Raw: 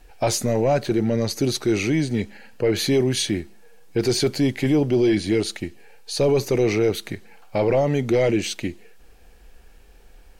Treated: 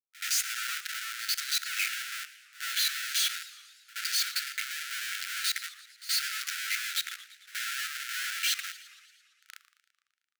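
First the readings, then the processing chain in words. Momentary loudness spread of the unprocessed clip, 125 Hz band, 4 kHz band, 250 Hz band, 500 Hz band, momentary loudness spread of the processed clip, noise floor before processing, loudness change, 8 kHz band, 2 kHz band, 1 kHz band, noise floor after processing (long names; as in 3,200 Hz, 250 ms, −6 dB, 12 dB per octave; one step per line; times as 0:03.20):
11 LU, below −40 dB, −0.5 dB, below −40 dB, below −40 dB, 12 LU, −49 dBFS, −8.5 dB, −1.0 dB, +0.5 dB, −11.0 dB, −80 dBFS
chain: spectral dynamics exaggerated over time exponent 1.5
in parallel at −0.5 dB: downward compressor 8 to 1, threshold −35 dBFS, peak gain reduction 18 dB
on the sum: multi-voice chorus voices 6, 0.34 Hz, delay 12 ms, depth 4.1 ms
comparator with hysteresis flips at −38 dBFS
linear-phase brick-wall high-pass 1,300 Hz
on a send: backwards echo 75 ms −17 dB
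on the sum: four-comb reverb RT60 0.65 s, combs from 33 ms, DRR 19.5 dB
feedback echo with a swinging delay time 113 ms, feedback 65%, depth 219 cents, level −17 dB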